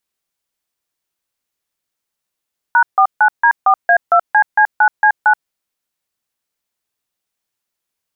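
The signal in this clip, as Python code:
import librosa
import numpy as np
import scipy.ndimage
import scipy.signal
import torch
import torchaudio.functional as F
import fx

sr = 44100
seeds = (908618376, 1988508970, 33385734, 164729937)

y = fx.dtmf(sr, digits='#49D4A2CC9C9', tone_ms=78, gap_ms=150, level_db=-9.5)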